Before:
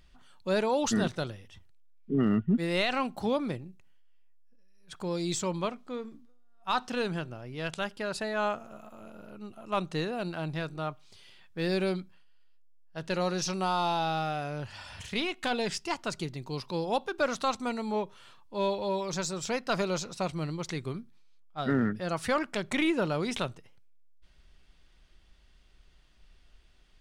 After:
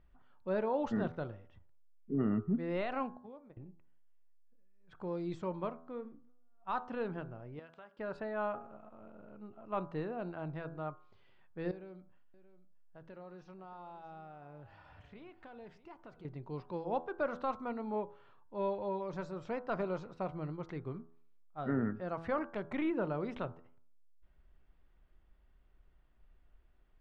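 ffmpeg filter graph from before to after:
ffmpeg -i in.wav -filter_complex "[0:a]asettb=1/sr,asplit=3[link_01][link_02][link_03];[link_01]atrim=end=3.174[link_04];[link_02]atrim=start=3.17:end=3.57,asetpts=PTS-STARTPTS,afade=type=in:duration=0.004:curve=qsin,afade=type=out:start_time=0.396:duration=0.004:curve=qsin,agate=range=-25dB:threshold=-31dB:ratio=16:release=100:detection=peak,acompressor=threshold=-48dB:ratio=3:attack=3.2:release=140:knee=1:detection=peak[link_05];[link_03]atrim=start=3.566[link_06];[link_04][link_05]acrossfade=duration=0.004:curve1=hsin:curve2=qsin[link_07];[link_07][link_06]acrossfade=duration=0.004:curve1=qsin:curve2=hsin,asettb=1/sr,asplit=3[link_08][link_09][link_10];[link_08]atrim=end=7.594[link_11];[link_09]atrim=start=7.59:end=7.99,asetpts=PTS-STARTPTS,afade=type=in:duration=0.004:curve=qsin,afade=type=out:start_time=0.396:duration=0.004:curve=qsin,highpass=frequency=540:poles=1,acompressor=threshold=-44dB:ratio=3:attack=3.2:release=140:knee=1:detection=peak[link_12];[link_10]atrim=start=7.986[link_13];[link_11][link_12]acrossfade=duration=0.004:curve1=hsin:curve2=qsin[link_14];[link_14][link_13]acrossfade=duration=0.004:curve1=qsin:curve2=hsin,asettb=1/sr,asplit=3[link_15][link_16][link_17];[link_15]atrim=end=11.714[link_18];[link_16]atrim=start=11.71:end=16.25,asetpts=PTS-STARTPTS,afade=type=in:duration=0.004:curve=qsin,afade=type=out:start_time=4.536:duration=0.004:curve=qsin,acompressor=threshold=-46dB:ratio=3:attack=3.2:release=140:knee=1:detection=peak,aecho=1:1:629:0.168,atrim=end_sample=200214[link_19];[link_17]atrim=start=16.246[link_20];[link_18][link_19]acrossfade=duration=0.004:curve1=hsin:curve2=qsin[link_21];[link_21][link_20]acrossfade=duration=0.004:curve1=qsin:curve2=hsin,lowpass=1400,equalizer=frequency=180:width_type=o:width=0.77:gain=-2,bandreject=frequency=82.7:width_type=h:width=4,bandreject=frequency=165.4:width_type=h:width=4,bandreject=frequency=248.1:width_type=h:width=4,bandreject=frequency=330.8:width_type=h:width=4,bandreject=frequency=413.5:width_type=h:width=4,bandreject=frequency=496.2:width_type=h:width=4,bandreject=frequency=578.9:width_type=h:width=4,bandreject=frequency=661.6:width_type=h:width=4,bandreject=frequency=744.3:width_type=h:width=4,bandreject=frequency=827:width_type=h:width=4,bandreject=frequency=909.7:width_type=h:width=4,bandreject=frequency=992.4:width_type=h:width=4,bandreject=frequency=1075.1:width_type=h:width=4,bandreject=frequency=1157.8:width_type=h:width=4,bandreject=frequency=1240.5:width_type=h:width=4,bandreject=frequency=1323.2:width_type=h:width=4,bandreject=frequency=1405.9:width_type=h:width=4,bandreject=frequency=1488.6:width_type=h:width=4,bandreject=frequency=1571.3:width_type=h:width=4,bandreject=frequency=1654:width_type=h:width=4,volume=-5dB" out.wav

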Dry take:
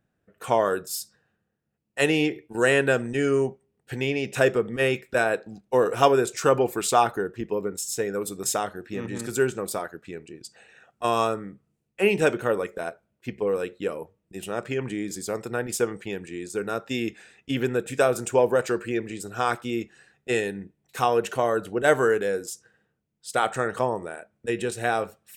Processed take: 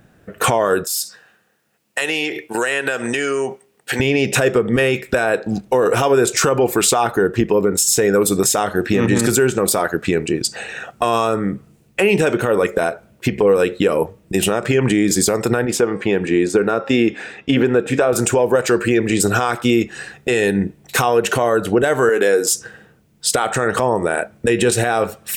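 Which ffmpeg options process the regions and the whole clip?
ffmpeg -i in.wav -filter_complex "[0:a]asettb=1/sr,asplit=3[link_01][link_02][link_03];[link_01]atrim=end=0.844[link_04];[link_02]atrim=start=0.84:end=4,asetpts=PTS-STARTPTS,afade=type=in:duration=0.004:curve=qsin,afade=type=out:start_time=3.156:duration=0.004:curve=qsin,highpass=frequency=1100:poles=1,acompressor=threshold=-39dB:ratio=10:attack=3.2:release=140:knee=1:detection=peak[link_05];[link_03]atrim=start=3.996[link_06];[link_04][link_05]acrossfade=duration=0.004:curve1=hsin:curve2=qsin[link_07];[link_07][link_06]acrossfade=duration=0.004:curve1=qsin:curve2=hsin,asettb=1/sr,asplit=3[link_08][link_09][link_10];[link_08]atrim=end=15.654[link_11];[link_09]atrim=start=15.65:end=18.13,asetpts=PTS-STARTPTS,afade=type=in:duration=0.004:curve=qsin,afade=type=out:start_time=2.476:duration=0.004:curve=qsin,lowpass=frequency=1600:poles=1,lowshelf=frequency=120:gain=-11.5,bandreject=frequency=270.9:width_type=h:width=4,bandreject=frequency=541.8:width_type=h:width=4,bandreject=frequency=812.7:width_type=h:width=4,bandreject=frequency=1083.6:width_type=h:width=4,bandreject=frequency=1354.5:width_type=h:width=4,bandreject=frequency=1625.4:width_type=h:width=4,bandreject=frequency=1896.3:width_type=h:width=4,bandreject=frequency=2167.2:width_type=h:width=4,bandreject=frequency=2438.1:width_type=h:width=4,bandreject=frequency=2709:width_type=h:width=4,bandreject=frequency=2979.9:width_type=h:width=4,bandreject=frequency=3250.8:width_type=h:width=4,bandreject=frequency=3521.7:width_type=h:width=4,bandreject=frequency=3792.6:width_type=h:width=4,bandreject=frequency=4063.5:width_type=h:width=4,bandreject=frequency=4334.4:width_type=h:width=4,bandreject=frequency=4605.3:width_type=h:width=4,bandreject=frequency=4876.2:width_type=h:width=4,bandreject=frequency=5147.1:width_type=h:width=4,bandreject=frequency=5418:width_type=h:width=4,bandreject=frequency=5688.9:width_type=h:width=4[link_12];[link_10]atrim=start=18.126[link_13];[link_11][link_12]acrossfade=duration=0.004:curve1=hsin:curve2=qsin[link_14];[link_14][link_13]acrossfade=duration=0.004:curve1=qsin:curve2=hsin,asettb=1/sr,asplit=3[link_15][link_16][link_17];[link_15]atrim=end=22.094[link_18];[link_16]atrim=start=22.09:end=22.52,asetpts=PTS-STARTPTS,afade=type=in:duration=0.004:curve=qsin,afade=type=out:start_time=0.426:duration=0.004:curve=qsin,asplit=2[link_19][link_20];[link_20]adelay=13,volume=-11dB[link_21];[link_19][link_21]amix=inputs=2:normalize=0,atrim=end_sample=18963,acompressor=threshold=-25dB:ratio=2:attack=3.2:release=140:knee=1:detection=peak,highpass=250[link_22];[link_17]atrim=start=22.516[link_23];[link_18][link_22]acrossfade=duration=0.004:curve1=hsin:curve2=qsin[link_24];[link_24][link_23]acrossfade=duration=0.004:curve1=qsin:curve2=hsin,acompressor=threshold=-34dB:ratio=4,alimiter=level_in=28dB:limit=-1dB:release=50:level=0:latency=1,volume=-4.5dB" out.wav

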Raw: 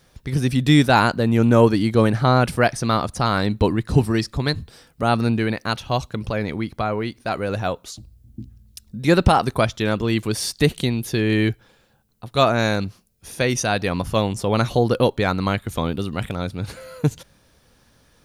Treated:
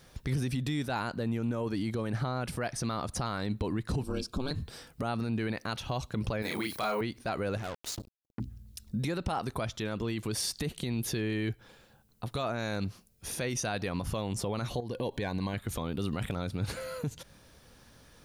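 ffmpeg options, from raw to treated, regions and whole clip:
ffmpeg -i in.wav -filter_complex "[0:a]asettb=1/sr,asplit=3[link_01][link_02][link_03];[link_01]atrim=end=4.034[link_04];[link_02]atrim=start=4.03:end=4.51,asetpts=PTS-STARTPTS,afade=type=in:duration=0.004:curve=qsin,afade=type=out:start_time=0.476:duration=0.004:curve=qsin,equalizer=frequency=2300:width_type=o:width=0.26:gain=-4.5,aeval=exprs='val(0)*sin(2*PI*130*n/s)':channel_layout=same,asuperstop=centerf=1900:order=12:qfactor=3.5[link_05];[link_03]atrim=start=4.506[link_06];[link_04][link_05]acrossfade=duration=0.004:curve1=hsin:curve2=qsin[link_07];[link_07][link_06]acrossfade=duration=0.004:curve1=qsin:curve2=hsin,asettb=1/sr,asplit=3[link_08][link_09][link_10];[link_08]atrim=end=6.424[link_11];[link_09]atrim=start=6.42:end=7.01,asetpts=PTS-STARTPTS,afade=type=in:duration=0.004:curve=qsin,afade=type=out:start_time=0.586:duration=0.004:curve=qsin,aemphasis=mode=production:type=riaa,asplit=2[link_12][link_13];[link_13]adelay=33,volume=-2dB[link_14];[link_12][link_14]amix=inputs=2:normalize=0,atrim=end_sample=26019,asoftclip=type=hard:threshold=-15dB[link_15];[link_10]atrim=start=7.006[link_16];[link_11][link_15]acrossfade=duration=0.004:curve1=hsin:curve2=qsin[link_17];[link_17][link_16]acrossfade=duration=0.004:curve1=qsin:curve2=hsin,asettb=1/sr,asplit=3[link_18][link_19][link_20];[link_18]atrim=end=7.574[link_21];[link_19]atrim=start=7.57:end=8.4,asetpts=PTS-STARTPTS,afade=type=in:duration=0.004:curve=qsin,afade=type=out:start_time=0.826:duration=0.004:curve=qsin,acompressor=threshold=-32dB:ratio=10:attack=3.2:release=140:knee=1:detection=peak,acrusher=bits=5:mix=0:aa=0.5[link_22];[link_20]atrim=start=8.396[link_23];[link_21][link_22]acrossfade=duration=0.004:curve1=hsin:curve2=qsin[link_24];[link_24][link_23]acrossfade=duration=0.004:curve1=qsin:curve2=hsin,asettb=1/sr,asplit=3[link_25][link_26][link_27];[link_25]atrim=end=14.804[link_28];[link_26]atrim=start=14.8:end=15.54,asetpts=PTS-STARTPTS,afade=type=in:duration=0.004:curve=qsin,afade=type=out:start_time=0.736:duration=0.004:curve=qsin,acompressor=threshold=-25dB:ratio=12:attack=3.2:release=140:knee=1:detection=peak,asuperstop=centerf=1300:order=8:qfactor=4.4[link_29];[link_27]atrim=start=15.536[link_30];[link_28][link_29]acrossfade=duration=0.004:curve1=hsin:curve2=qsin[link_31];[link_31][link_30]acrossfade=duration=0.004:curve1=qsin:curve2=hsin,acompressor=threshold=-26dB:ratio=4,alimiter=limit=-23dB:level=0:latency=1:release=31" out.wav

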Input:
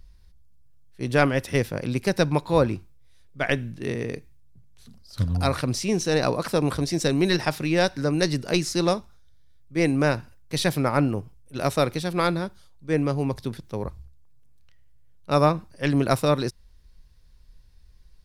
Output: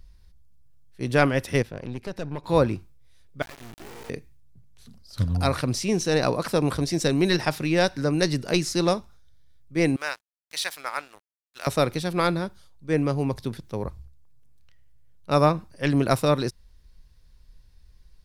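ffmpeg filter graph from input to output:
ffmpeg -i in.wav -filter_complex "[0:a]asettb=1/sr,asplit=3[link_01][link_02][link_03];[link_01]atrim=end=1.624[link_04];[link_02]atrim=start=1.62:end=2.44,asetpts=PTS-STARTPTS,afade=type=in:duration=0.004:curve=qsin,afade=type=out:start_time=0.816:duration=0.004:curve=qsin,lowpass=frequency=3300:poles=1,acompressor=threshold=-31dB:ratio=1.5:attack=3.2:release=140:knee=1:detection=peak,aeval=exprs='(tanh(22.4*val(0)+0.75)-tanh(0.75))/22.4':channel_layout=same[link_05];[link_03]atrim=start=2.436[link_06];[link_04][link_05]acrossfade=duration=0.004:curve1=hsin:curve2=qsin[link_07];[link_07][link_06]acrossfade=duration=0.004:curve1=qsin:curve2=hsin,asettb=1/sr,asplit=3[link_08][link_09][link_10];[link_08]atrim=end=3.424[link_11];[link_09]atrim=start=3.42:end=4.1,asetpts=PTS-STARTPTS,afade=type=in:duration=0.004:curve=qsin,afade=type=out:start_time=0.676:duration=0.004:curve=qsin,lowshelf=frequency=250:gain=-7.5,acompressor=threshold=-35dB:ratio=5:attack=3.2:release=140:knee=1:detection=peak,acrusher=bits=4:dc=4:mix=0:aa=0.000001[link_12];[link_10]atrim=start=4.096[link_13];[link_11][link_12]acrossfade=duration=0.004:curve1=hsin:curve2=qsin[link_14];[link_14][link_13]acrossfade=duration=0.004:curve1=qsin:curve2=hsin,asettb=1/sr,asplit=3[link_15][link_16][link_17];[link_15]atrim=end=9.964[link_18];[link_16]atrim=start=9.96:end=11.67,asetpts=PTS-STARTPTS,afade=type=in:duration=0.004:curve=qsin,afade=type=out:start_time=1.706:duration=0.004:curve=qsin,highpass=1200,aeval=exprs='sgn(val(0))*max(abs(val(0))-0.00531,0)':channel_layout=same[link_19];[link_17]atrim=start=11.666[link_20];[link_18][link_19]acrossfade=duration=0.004:curve1=hsin:curve2=qsin[link_21];[link_21][link_20]acrossfade=duration=0.004:curve1=qsin:curve2=hsin" out.wav

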